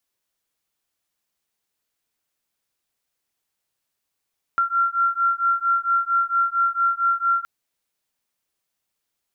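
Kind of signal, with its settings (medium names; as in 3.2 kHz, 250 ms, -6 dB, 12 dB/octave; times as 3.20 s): beating tones 1.37 kHz, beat 4.4 Hz, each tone -21 dBFS 2.87 s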